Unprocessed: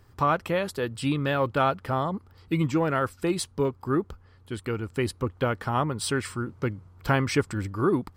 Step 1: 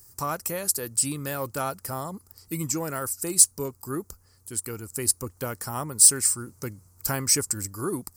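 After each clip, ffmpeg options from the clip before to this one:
-af "aexciter=amount=10.4:drive=9.6:freq=5.3k,volume=-6.5dB"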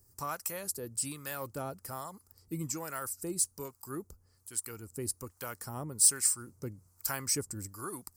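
-filter_complex "[0:a]acrossover=split=690[a][b];[a]aeval=exprs='val(0)*(1-0.7/2+0.7/2*cos(2*PI*1.2*n/s))':c=same[c];[b]aeval=exprs='val(0)*(1-0.7/2-0.7/2*cos(2*PI*1.2*n/s))':c=same[d];[c][d]amix=inputs=2:normalize=0,volume=-5dB"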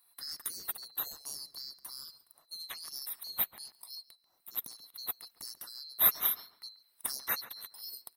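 -filter_complex "[0:a]afftfilt=real='real(if(lt(b,736),b+184*(1-2*mod(floor(b/184),2)),b),0)':imag='imag(if(lt(b,736),b+184*(1-2*mod(floor(b/184),2)),b),0)':win_size=2048:overlap=0.75,equalizer=f=3.3k:t=o:w=1.2:g=-11.5,asplit=2[a][b];[b]adelay=139,lowpass=f=2.1k:p=1,volume=-13.5dB,asplit=2[c][d];[d]adelay=139,lowpass=f=2.1k:p=1,volume=0.29,asplit=2[e][f];[f]adelay=139,lowpass=f=2.1k:p=1,volume=0.29[g];[a][c][e][g]amix=inputs=4:normalize=0"

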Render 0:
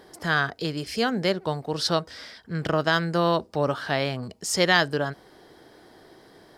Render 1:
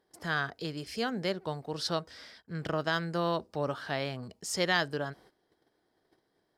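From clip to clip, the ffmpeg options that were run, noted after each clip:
-af "agate=range=-16dB:threshold=-48dB:ratio=16:detection=peak,volume=-8dB"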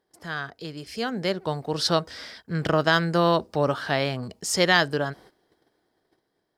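-af "dynaudnorm=f=290:g=9:m=11.5dB,volume=-1dB"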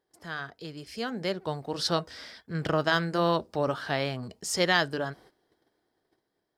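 -af "flanger=delay=2.2:depth=1.3:regen=-86:speed=1.5:shape=triangular"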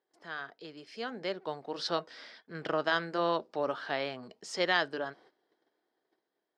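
-af "highpass=290,lowpass=4.5k,volume=-3.5dB"

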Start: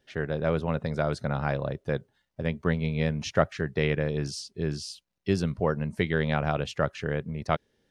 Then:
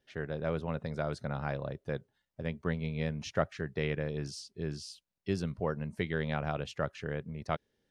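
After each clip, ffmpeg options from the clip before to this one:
-af "deesser=0.65,volume=-7dB"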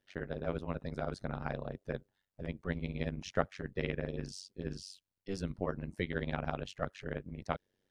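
-af "tremolo=f=95:d=1,volume=1dB"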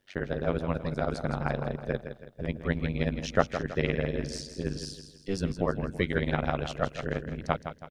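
-af "aecho=1:1:163|326|489|652:0.335|0.137|0.0563|0.0231,volume=7.5dB"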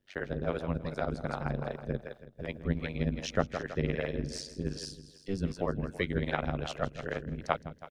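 -filter_complex "[0:a]acrossover=split=400[a][b];[a]aeval=exprs='val(0)*(1-0.7/2+0.7/2*cos(2*PI*2.6*n/s))':c=same[c];[b]aeval=exprs='val(0)*(1-0.7/2-0.7/2*cos(2*PI*2.6*n/s))':c=same[d];[c][d]amix=inputs=2:normalize=0"

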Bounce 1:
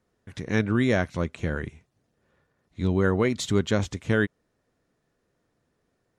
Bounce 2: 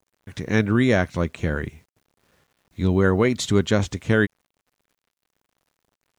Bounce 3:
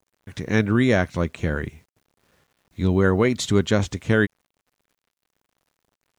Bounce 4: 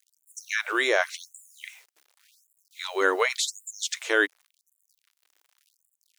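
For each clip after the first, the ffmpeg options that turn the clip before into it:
-af "acrusher=bits=10:mix=0:aa=0.000001,volume=4dB"
-af anull
-filter_complex "[0:a]tiltshelf=f=910:g=-8,acrossover=split=1200[a][b];[b]alimiter=limit=-17dB:level=0:latency=1:release=48[c];[a][c]amix=inputs=2:normalize=0,afftfilt=real='re*gte(b*sr/1024,260*pow(7100/260,0.5+0.5*sin(2*PI*0.89*pts/sr)))':imag='im*gte(b*sr/1024,260*pow(7100/260,0.5+0.5*sin(2*PI*0.89*pts/sr)))':win_size=1024:overlap=0.75,volume=1dB"

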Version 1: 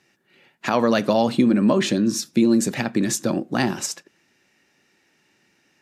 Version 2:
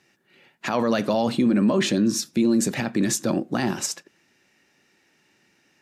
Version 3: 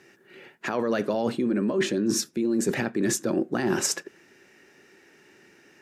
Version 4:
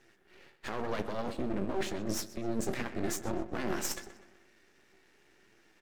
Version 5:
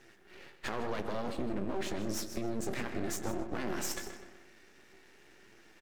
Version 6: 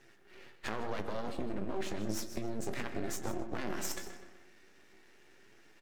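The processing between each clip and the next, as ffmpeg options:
-af "alimiter=limit=-12.5dB:level=0:latency=1:release=17"
-af "equalizer=f=400:t=o:w=0.67:g=10,equalizer=f=1.6k:t=o:w=0.67:g=5,equalizer=f=4k:t=o:w=0.67:g=-3,areverse,acompressor=threshold=-26dB:ratio=12,areverse,volume=4.5dB"
-filter_complex "[0:a]flanger=delay=8.6:depth=7.4:regen=43:speed=0.89:shape=sinusoidal,asplit=2[a][b];[b]adelay=126,lowpass=f=3.4k:p=1,volume=-13dB,asplit=2[c][d];[d]adelay=126,lowpass=f=3.4k:p=1,volume=0.54,asplit=2[e][f];[f]adelay=126,lowpass=f=3.4k:p=1,volume=0.54,asplit=2[g][h];[h]adelay=126,lowpass=f=3.4k:p=1,volume=0.54,asplit=2[i][j];[j]adelay=126,lowpass=f=3.4k:p=1,volume=0.54,asplit=2[k][l];[l]adelay=126,lowpass=f=3.4k:p=1,volume=0.54[m];[a][c][e][g][i][k][m]amix=inputs=7:normalize=0,aeval=exprs='max(val(0),0)':c=same,volume=-1.5dB"
-filter_complex "[0:a]asplit=2[a][b];[b]alimiter=level_in=2.5dB:limit=-24dB:level=0:latency=1,volume=-2.5dB,volume=0.5dB[c];[a][c]amix=inputs=2:normalize=0,acompressor=threshold=-30dB:ratio=3,aecho=1:1:158:0.211,volume=-1.5dB"
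-filter_complex "[0:a]asplit=2[a][b];[b]acrusher=bits=3:mix=0:aa=0.5,volume=-7.5dB[c];[a][c]amix=inputs=2:normalize=0,flanger=delay=7.1:depth=4.1:regen=75:speed=0.35:shape=sinusoidal,volume=1.5dB"

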